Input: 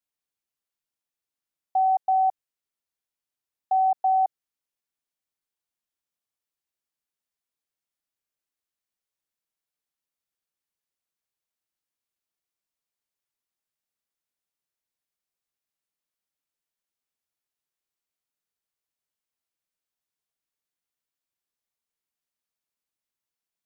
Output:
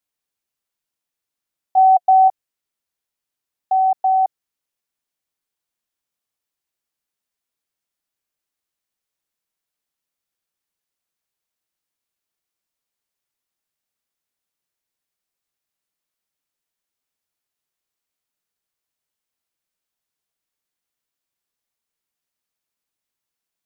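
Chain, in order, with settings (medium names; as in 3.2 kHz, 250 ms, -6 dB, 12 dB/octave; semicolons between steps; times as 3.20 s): 1.77–2.28 s: peaking EQ 720 Hz +7 dB 0.21 oct; trim +5 dB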